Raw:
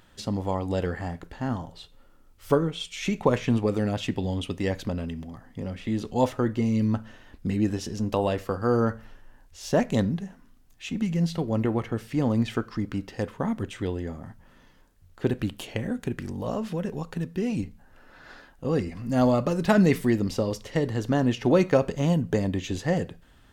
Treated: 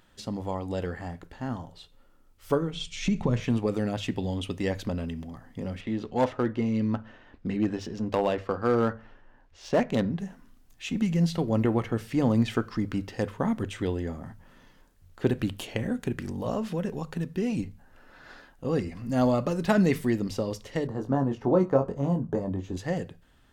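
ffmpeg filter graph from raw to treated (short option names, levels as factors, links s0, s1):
-filter_complex "[0:a]asettb=1/sr,asplit=3[s0][s1][s2];[s0]atrim=end=2.734[s3];[s1]atrim=start=2.73:end=3.4,asetpts=PTS-STARTPTS,afade=t=in:d=0.004:c=qsin,afade=t=out:st=0.666:d=0.004:c=qsin,lowpass=6400,bass=f=250:g=14,treble=f=4000:g=6,acompressor=threshold=0.126:ratio=3:attack=3.2:release=140:knee=1:detection=peak[s4];[s2]atrim=start=3.396[s5];[s3][s4]acrossfade=d=0.004:c1=hsin:c2=qsin[s6];[s6][s5]acrossfade=d=0.004:c1=qsin:c2=hsin,asettb=1/sr,asplit=3[s7][s8][s9];[s7]atrim=end=5.814[s10];[s8]atrim=start=5.81:end=10.19,asetpts=PTS-STARTPTS,afade=t=in:d=0.004:c=qsin,afade=t=out:st=4.376:d=0.004:c=qsin,adynamicsmooth=sensitivity=3.5:basefreq=3200,asoftclip=type=hard:threshold=0.158,lowshelf=f=180:g=-7[s11];[s9]atrim=start=10.186[s12];[s10][s11]acrossfade=d=0.004:c1=hsin:c2=qsin[s13];[s13][s12]acrossfade=d=0.004:c1=qsin:c2=hsin,asettb=1/sr,asplit=3[s14][s15][s16];[s14]atrim=end=20.874[s17];[s15]atrim=start=20.87:end=22.77,asetpts=PTS-STARTPTS,afade=t=in:d=0.004:c=qsin,afade=t=out:st=1.896:d=0.004:c=qsin,highshelf=f=1600:t=q:w=1.5:g=-12.5,asplit=2[s18][s19];[s19]adelay=22,volume=0.531[s20];[s18][s20]amix=inputs=2:normalize=0,atrim=end_sample=83790[s21];[s16]atrim=start=22.766[s22];[s17][s21]acrossfade=d=0.004:c1=hsin:c2=qsin[s23];[s23][s22]acrossfade=d=0.004:c1=qsin:c2=hsin,bandreject=f=50:t=h:w=6,bandreject=f=100:t=h:w=6,bandreject=f=150:t=h:w=6,dynaudnorm=f=510:g=17:m=1.78,volume=0.631"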